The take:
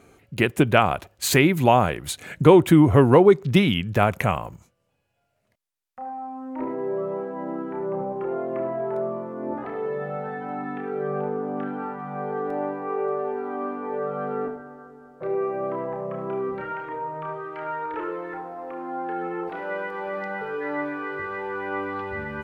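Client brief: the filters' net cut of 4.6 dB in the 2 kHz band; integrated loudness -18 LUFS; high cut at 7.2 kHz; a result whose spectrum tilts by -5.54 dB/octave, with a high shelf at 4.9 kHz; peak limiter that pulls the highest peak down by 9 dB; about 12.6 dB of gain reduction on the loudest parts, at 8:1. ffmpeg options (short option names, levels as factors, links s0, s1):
-af "lowpass=7200,equalizer=f=2000:t=o:g=-7.5,highshelf=f=4900:g=8,acompressor=threshold=0.0794:ratio=8,volume=4.73,alimiter=limit=0.398:level=0:latency=1"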